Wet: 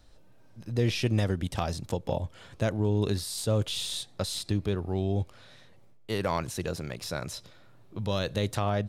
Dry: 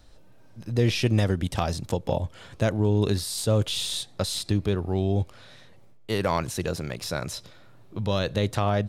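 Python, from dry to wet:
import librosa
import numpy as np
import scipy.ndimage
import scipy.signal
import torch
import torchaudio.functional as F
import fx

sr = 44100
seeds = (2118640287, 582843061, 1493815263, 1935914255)

y = fx.high_shelf(x, sr, hz=fx.line((7.99, 8300.0), (8.57, 4800.0)), db=6.0, at=(7.99, 8.57), fade=0.02)
y = y * 10.0 ** (-4.0 / 20.0)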